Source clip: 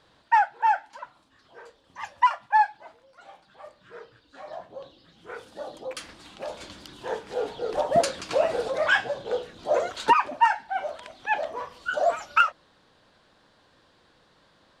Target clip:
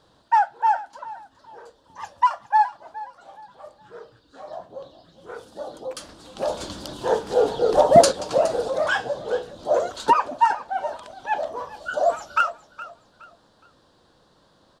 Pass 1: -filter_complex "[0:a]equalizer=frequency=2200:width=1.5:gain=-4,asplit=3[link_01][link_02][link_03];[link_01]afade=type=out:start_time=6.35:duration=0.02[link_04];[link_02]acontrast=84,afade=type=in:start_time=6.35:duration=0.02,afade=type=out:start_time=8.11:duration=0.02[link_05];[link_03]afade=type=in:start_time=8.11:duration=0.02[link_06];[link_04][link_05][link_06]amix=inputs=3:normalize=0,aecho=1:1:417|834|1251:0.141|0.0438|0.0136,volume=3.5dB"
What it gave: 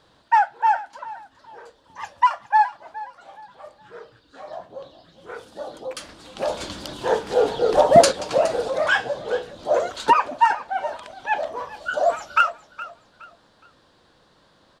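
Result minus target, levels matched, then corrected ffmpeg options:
2,000 Hz band +3.0 dB
-filter_complex "[0:a]equalizer=frequency=2200:width=1.5:gain=-12,asplit=3[link_01][link_02][link_03];[link_01]afade=type=out:start_time=6.35:duration=0.02[link_04];[link_02]acontrast=84,afade=type=in:start_time=6.35:duration=0.02,afade=type=out:start_time=8.11:duration=0.02[link_05];[link_03]afade=type=in:start_time=8.11:duration=0.02[link_06];[link_04][link_05][link_06]amix=inputs=3:normalize=0,aecho=1:1:417|834|1251:0.141|0.0438|0.0136,volume=3.5dB"

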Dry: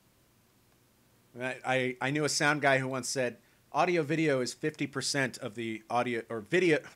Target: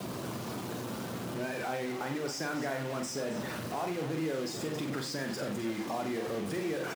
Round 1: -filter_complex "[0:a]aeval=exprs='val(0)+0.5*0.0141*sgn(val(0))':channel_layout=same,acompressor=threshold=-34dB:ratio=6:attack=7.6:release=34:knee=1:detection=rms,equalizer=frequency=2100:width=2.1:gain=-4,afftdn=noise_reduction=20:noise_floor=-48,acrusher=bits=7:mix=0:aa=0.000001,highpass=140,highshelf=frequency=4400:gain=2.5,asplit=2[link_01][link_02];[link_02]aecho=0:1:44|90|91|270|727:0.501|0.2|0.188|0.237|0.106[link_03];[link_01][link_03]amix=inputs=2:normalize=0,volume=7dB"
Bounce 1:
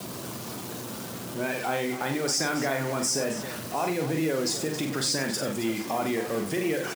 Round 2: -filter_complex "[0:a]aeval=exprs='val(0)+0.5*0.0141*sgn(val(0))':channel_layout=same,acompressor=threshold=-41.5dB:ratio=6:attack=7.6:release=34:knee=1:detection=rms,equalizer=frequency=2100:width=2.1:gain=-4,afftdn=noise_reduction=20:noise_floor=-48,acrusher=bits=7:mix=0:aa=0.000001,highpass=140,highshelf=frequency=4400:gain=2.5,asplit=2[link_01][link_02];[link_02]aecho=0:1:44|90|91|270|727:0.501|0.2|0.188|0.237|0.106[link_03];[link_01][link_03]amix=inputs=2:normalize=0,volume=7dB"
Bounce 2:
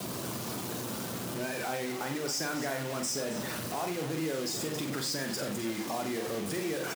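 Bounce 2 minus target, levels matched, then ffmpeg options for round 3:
8,000 Hz band +5.5 dB
-filter_complex "[0:a]aeval=exprs='val(0)+0.5*0.0141*sgn(val(0))':channel_layout=same,acompressor=threshold=-41.5dB:ratio=6:attack=7.6:release=34:knee=1:detection=rms,equalizer=frequency=2100:width=2.1:gain=-4,afftdn=noise_reduction=20:noise_floor=-48,acrusher=bits=7:mix=0:aa=0.000001,highpass=140,highshelf=frequency=4400:gain=-7.5,asplit=2[link_01][link_02];[link_02]aecho=0:1:44|90|91|270|727:0.501|0.2|0.188|0.237|0.106[link_03];[link_01][link_03]amix=inputs=2:normalize=0,volume=7dB"

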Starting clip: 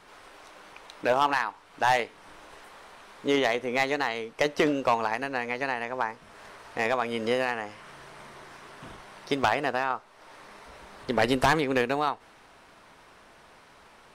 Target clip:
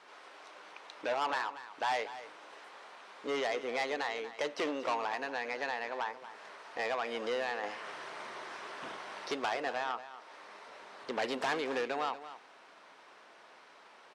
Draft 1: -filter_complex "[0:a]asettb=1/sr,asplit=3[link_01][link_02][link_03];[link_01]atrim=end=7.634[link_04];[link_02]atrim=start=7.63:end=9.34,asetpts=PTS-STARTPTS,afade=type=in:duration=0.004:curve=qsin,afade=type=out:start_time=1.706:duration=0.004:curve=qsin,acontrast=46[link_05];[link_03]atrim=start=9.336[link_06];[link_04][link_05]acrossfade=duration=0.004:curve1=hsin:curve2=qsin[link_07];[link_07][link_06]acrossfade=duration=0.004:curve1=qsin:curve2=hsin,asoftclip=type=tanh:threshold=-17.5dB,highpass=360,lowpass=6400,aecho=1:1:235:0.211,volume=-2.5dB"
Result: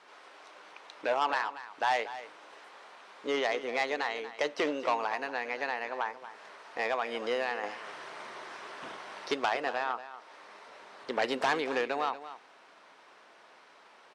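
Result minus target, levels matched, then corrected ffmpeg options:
soft clipping: distortion −8 dB
-filter_complex "[0:a]asettb=1/sr,asplit=3[link_01][link_02][link_03];[link_01]atrim=end=7.634[link_04];[link_02]atrim=start=7.63:end=9.34,asetpts=PTS-STARTPTS,afade=type=in:duration=0.004:curve=qsin,afade=type=out:start_time=1.706:duration=0.004:curve=qsin,acontrast=46[link_05];[link_03]atrim=start=9.336[link_06];[link_04][link_05]acrossfade=duration=0.004:curve1=hsin:curve2=qsin[link_07];[link_07][link_06]acrossfade=duration=0.004:curve1=qsin:curve2=hsin,asoftclip=type=tanh:threshold=-25dB,highpass=360,lowpass=6400,aecho=1:1:235:0.211,volume=-2.5dB"

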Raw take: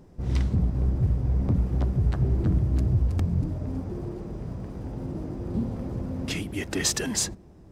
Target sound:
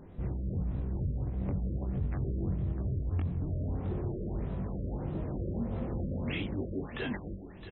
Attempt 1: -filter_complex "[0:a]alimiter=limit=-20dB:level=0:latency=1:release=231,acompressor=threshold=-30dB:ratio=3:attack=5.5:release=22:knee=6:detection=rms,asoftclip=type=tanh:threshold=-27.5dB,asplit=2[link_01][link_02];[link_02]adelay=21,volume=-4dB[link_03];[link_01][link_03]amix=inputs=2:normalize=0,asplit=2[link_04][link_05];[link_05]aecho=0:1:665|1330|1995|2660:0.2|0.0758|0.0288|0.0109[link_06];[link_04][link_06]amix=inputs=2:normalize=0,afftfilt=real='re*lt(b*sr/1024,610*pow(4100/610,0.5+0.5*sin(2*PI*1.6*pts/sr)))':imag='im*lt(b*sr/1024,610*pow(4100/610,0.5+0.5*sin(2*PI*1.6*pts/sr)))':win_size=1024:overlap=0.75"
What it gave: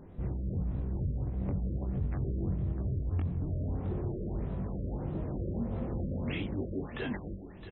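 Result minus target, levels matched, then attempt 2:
4,000 Hz band −2.5 dB
-filter_complex "[0:a]alimiter=limit=-20dB:level=0:latency=1:release=231,acompressor=threshold=-30dB:ratio=3:attack=5.5:release=22:knee=6:detection=rms,equalizer=frequency=4600:width_type=o:width=2.7:gain=3.5,asoftclip=type=tanh:threshold=-27.5dB,asplit=2[link_01][link_02];[link_02]adelay=21,volume=-4dB[link_03];[link_01][link_03]amix=inputs=2:normalize=0,asplit=2[link_04][link_05];[link_05]aecho=0:1:665|1330|1995|2660:0.2|0.0758|0.0288|0.0109[link_06];[link_04][link_06]amix=inputs=2:normalize=0,afftfilt=real='re*lt(b*sr/1024,610*pow(4100/610,0.5+0.5*sin(2*PI*1.6*pts/sr)))':imag='im*lt(b*sr/1024,610*pow(4100/610,0.5+0.5*sin(2*PI*1.6*pts/sr)))':win_size=1024:overlap=0.75"

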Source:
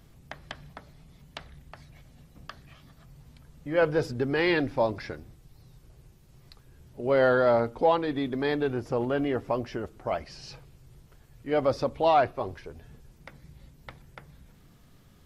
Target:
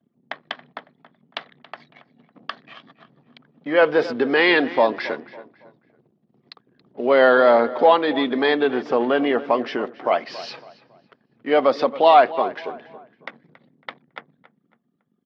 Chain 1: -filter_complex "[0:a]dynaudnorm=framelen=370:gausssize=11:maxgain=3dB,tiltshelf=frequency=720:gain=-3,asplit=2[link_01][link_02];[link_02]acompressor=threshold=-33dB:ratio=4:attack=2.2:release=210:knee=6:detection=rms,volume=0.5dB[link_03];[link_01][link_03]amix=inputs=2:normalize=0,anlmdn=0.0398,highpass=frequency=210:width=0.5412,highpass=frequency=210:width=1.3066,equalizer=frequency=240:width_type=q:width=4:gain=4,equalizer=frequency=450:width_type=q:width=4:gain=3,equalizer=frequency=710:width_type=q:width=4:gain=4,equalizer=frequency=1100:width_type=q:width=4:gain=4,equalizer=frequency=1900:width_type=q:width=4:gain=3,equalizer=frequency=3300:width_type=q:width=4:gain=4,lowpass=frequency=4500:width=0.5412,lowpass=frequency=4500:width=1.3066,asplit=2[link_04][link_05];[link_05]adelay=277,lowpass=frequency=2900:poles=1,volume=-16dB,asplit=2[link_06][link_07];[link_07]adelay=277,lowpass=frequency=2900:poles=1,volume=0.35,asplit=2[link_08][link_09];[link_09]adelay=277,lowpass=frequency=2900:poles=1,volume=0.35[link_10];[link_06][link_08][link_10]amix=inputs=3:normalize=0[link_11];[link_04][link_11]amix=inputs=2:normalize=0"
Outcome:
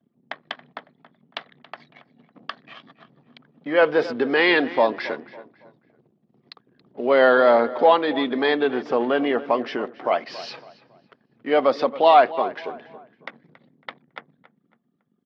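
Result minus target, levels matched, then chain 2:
downward compressor: peak gain reduction +6 dB
-filter_complex "[0:a]dynaudnorm=framelen=370:gausssize=11:maxgain=3dB,tiltshelf=frequency=720:gain=-3,asplit=2[link_01][link_02];[link_02]acompressor=threshold=-25dB:ratio=4:attack=2.2:release=210:knee=6:detection=rms,volume=0.5dB[link_03];[link_01][link_03]amix=inputs=2:normalize=0,anlmdn=0.0398,highpass=frequency=210:width=0.5412,highpass=frequency=210:width=1.3066,equalizer=frequency=240:width_type=q:width=4:gain=4,equalizer=frequency=450:width_type=q:width=4:gain=3,equalizer=frequency=710:width_type=q:width=4:gain=4,equalizer=frequency=1100:width_type=q:width=4:gain=4,equalizer=frequency=1900:width_type=q:width=4:gain=3,equalizer=frequency=3300:width_type=q:width=4:gain=4,lowpass=frequency=4500:width=0.5412,lowpass=frequency=4500:width=1.3066,asplit=2[link_04][link_05];[link_05]adelay=277,lowpass=frequency=2900:poles=1,volume=-16dB,asplit=2[link_06][link_07];[link_07]adelay=277,lowpass=frequency=2900:poles=1,volume=0.35,asplit=2[link_08][link_09];[link_09]adelay=277,lowpass=frequency=2900:poles=1,volume=0.35[link_10];[link_06][link_08][link_10]amix=inputs=3:normalize=0[link_11];[link_04][link_11]amix=inputs=2:normalize=0"

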